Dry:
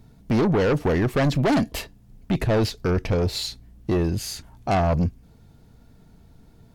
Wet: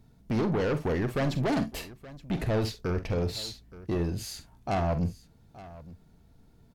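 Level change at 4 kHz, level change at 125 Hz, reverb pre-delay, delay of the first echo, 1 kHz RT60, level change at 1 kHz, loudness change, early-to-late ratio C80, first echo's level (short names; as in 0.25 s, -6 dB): -7.0 dB, -6.5 dB, none, 46 ms, none, -7.0 dB, -7.0 dB, none, -11.5 dB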